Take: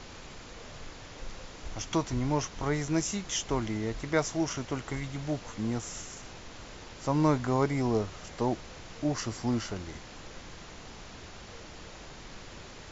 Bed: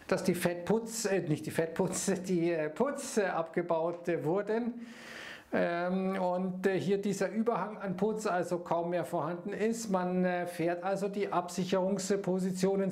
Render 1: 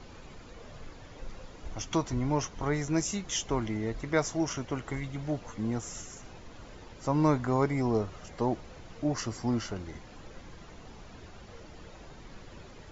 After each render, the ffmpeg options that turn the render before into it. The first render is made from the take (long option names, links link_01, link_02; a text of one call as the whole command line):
ffmpeg -i in.wav -af "afftdn=noise_reduction=9:noise_floor=-47" out.wav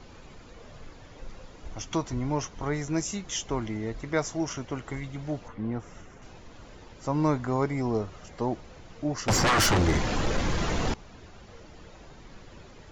ffmpeg -i in.wav -filter_complex "[0:a]asettb=1/sr,asplit=3[link_01][link_02][link_03];[link_01]atrim=end=5.484[link_04];[link_02]atrim=start=5.48:end=6.22,asetpts=PTS-STARTPTS,afade=type=in:duration=0.004:curve=qsin,afade=type=out:start_time=0.736:duration=0.004:curve=qsin,lowpass=2500[link_05];[link_03]atrim=start=6.216[link_06];[link_04][link_05]acrossfade=duration=0.004:curve1=hsin:curve2=qsin[link_07];[link_07][link_06]acrossfade=duration=0.004:curve1=qsin:curve2=hsin,asettb=1/sr,asplit=3[link_08][link_09][link_10];[link_08]atrim=end=9.284[link_11];[link_09]atrim=start=9.28:end=10.94,asetpts=PTS-STARTPTS,afade=type=in:duration=0.004:curve=qsin,afade=type=out:start_time=1.656:duration=0.004:curve=qsin,aeval=exprs='0.119*sin(PI/2*7.94*val(0)/0.119)':channel_layout=same[link_12];[link_10]atrim=start=10.936[link_13];[link_11][link_12]acrossfade=duration=0.004:curve1=hsin:curve2=qsin[link_14];[link_14][link_13]acrossfade=duration=0.004:curve1=qsin:curve2=hsin" out.wav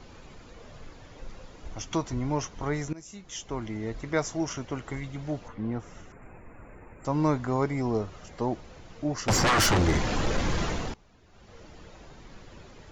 ffmpeg -i in.wav -filter_complex "[0:a]asettb=1/sr,asplit=3[link_01][link_02][link_03];[link_01]atrim=end=6.124[link_04];[link_02]atrim=start=6.12:end=7.05,asetpts=PTS-STARTPTS,afade=type=in:duration=0.004:curve=qsin,afade=type=out:start_time=0.926:duration=0.004:curve=qsin,asuperstop=centerf=4500:order=20:qfactor=0.92[link_05];[link_03]atrim=start=7.046[link_06];[link_04][link_05]acrossfade=duration=0.004:curve1=hsin:curve2=qsin[link_07];[link_07][link_06]acrossfade=duration=0.004:curve1=qsin:curve2=hsin,asplit=4[link_08][link_09][link_10][link_11];[link_08]atrim=end=2.93,asetpts=PTS-STARTPTS,afade=type=out:start_time=2.926:duration=0.004:curve=hsin:silence=0.0944061[link_12];[link_09]atrim=start=2.93:end=10.98,asetpts=PTS-STARTPTS,afade=type=in:duration=1.01:silence=0.0944061,afade=type=out:start_time=7.67:duration=0.38:silence=0.281838[link_13];[link_10]atrim=start=10.98:end=11.26,asetpts=PTS-STARTPTS,volume=-11dB[link_14];[link_11]atrim=start=11.26,asetpts=PTS-STARTPTS,afade=type=in:duration=0.38:silence=0.281838[link_15];[link_12][link_13][link_14][link_15]concat=n=4:v=0:a=1" out.wav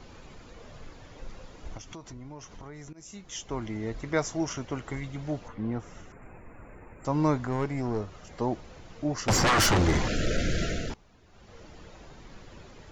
ffmpeg -i in.wav -filter_complex "[0:a]asettb=1/sr,asplit=3[link_01][link_02][link_03];[link_01]atrim=end=1.774[link_04];[link_02]atrim=start=1.77:end=3.02,asetpts=PTS-STARTPTS,afade=type=in:duration=0.004:curve=qsin,afade=type=out:start_time=1.246:duration=0.004:curve=qsin,acompressor=threshold=-41dB:ratio=6:attack=3.2:release=140:knee=1:detection=peak[link_05];[link_03]atrim=start=3.016[link_06];[link_04][link_05]acrossfade=duration=0.004:curve1=hsin:curve2=qsin[link_07];[link_07][link_06]acrossfade=duration=0.004:curve1=qsin:curve2=hsin,asettb=1/sr,asplit=3[link_08][link_09][link_10];[link_08]atrim=end=7.474[link_11];[link_09]atrim=start=7.47:end=8.3,asetpts=PTS-STARTPTS,afade=type=in:duration=0.004:curve=qsin,afade=type=out:start_time=0.826:duration=0.004:curve=qsin,aeval=exprs='(tanh(12.6*val(0)+0.45)-tanh(0.45))/12.6':channel_layout=same[link_12];[link_10]atrim=start=8.296[link_13];[link_11][link_12]acrossfade=duration=0.004:curve1=hsin:curve2=qsin[link_14];[link_14][link_13]acrossfade=duration=0.004:curve1=qsin:curve2=hsin,asettb=1/sr,asplit=3[link_15][link_16][link_17];[link_15]atrim=end=10.084[link_18];[link_16]atrim=start=10.08:end=10.9,asetpts=PTS-STARTPTS,afade=type=in:duration=0.004:curve=qsin,afade=type=out:start_time=0.816:duration=0.004:curve=qsin,asuperstop=centerf=960:order=20:qfactor=1.6[link_19];[link_17]atrim=start=10.896[link_20];[link_18][link_19]acrossfade=duration=0.004:curve1=hsin:curve2=qsin[link_21];[link_21][link_20]acrossfade=duration=0.004:curve1=qsin:curve2=hsin" out.wav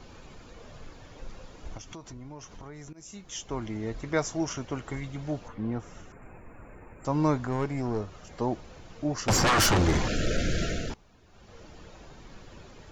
ffmpeg -i in.wav -af "equalizer=frequency=14000:width=0.6:gain=2.5,bandreject=frequency=2000:width=25" out.wav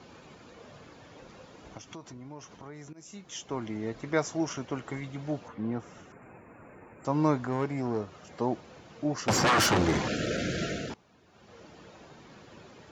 ffmpeg -i in.wav -af "highpass=130,highshelf=frequency=6400:gain=-6.5" out.wav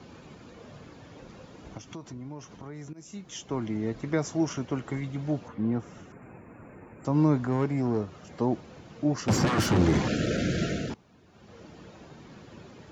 ffmpeg -i in.wav -filter_complex "[0:a]acrossover=split=340[link_01][link_02];[link_01]acontrast=52[link_03];[link_02]alimiter=limit=-22dB:level=0:latency=1:release=70[link_04];[link_03][link_04]amix=inputs=2:normalize=0" out.wav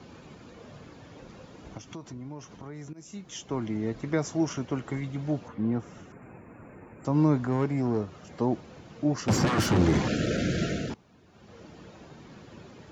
ffmpeg -i in.wav -af anull out.wav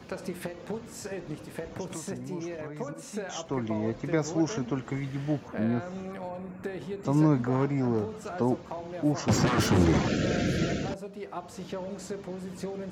ffmpeg -i in.wav -i bed.wav -filter_complex "[1:a]volume=-6.5dB[link_01];[0:a][link_01]amix=inputs=2:normalize=0" out.wav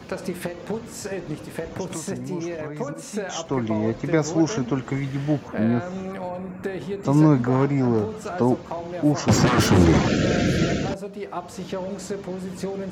ffmpeg -i in.wav -af "volume=6.5dB" out.wav